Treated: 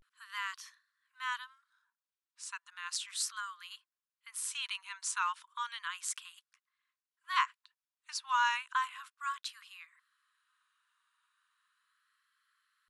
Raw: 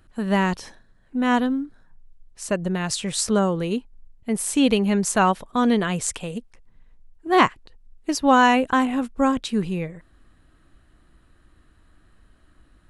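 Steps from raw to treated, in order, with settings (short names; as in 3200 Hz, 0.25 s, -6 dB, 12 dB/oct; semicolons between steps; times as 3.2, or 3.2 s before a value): rippled Chebyshev high-pass 1000 Hz, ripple 3 dB; vibrato 0.34 Hz 79 cents; gain -8.5 dB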